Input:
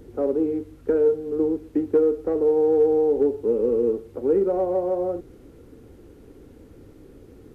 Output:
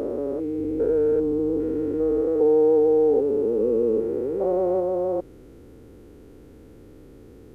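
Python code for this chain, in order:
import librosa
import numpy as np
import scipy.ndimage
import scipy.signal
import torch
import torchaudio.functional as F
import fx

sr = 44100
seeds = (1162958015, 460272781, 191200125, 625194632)

y = fx.spec_steps(x, sr, hold_ms=400)
y = fx.low_shelf(y, sr, hz=120.0, db=8.0, at=(0.58, 2.21))
y = y * librosa.db_to_amplitude(2.0)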